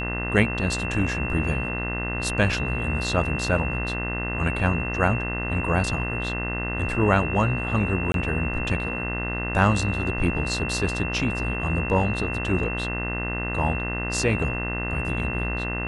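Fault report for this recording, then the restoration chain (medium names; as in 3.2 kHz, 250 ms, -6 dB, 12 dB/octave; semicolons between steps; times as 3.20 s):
buzz 60 Hz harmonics 35 -30 dBFS
whine 2.7 kHz -30 dBFS
8.12–8.14 s: dropout 22 ms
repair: de-hum 60 Hz, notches 35; band-stop 2.7 kHz, Q 30; interpolate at 8.12 s, 22 ms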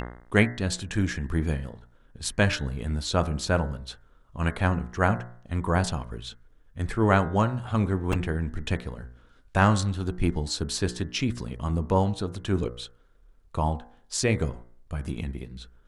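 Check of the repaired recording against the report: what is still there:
nothing left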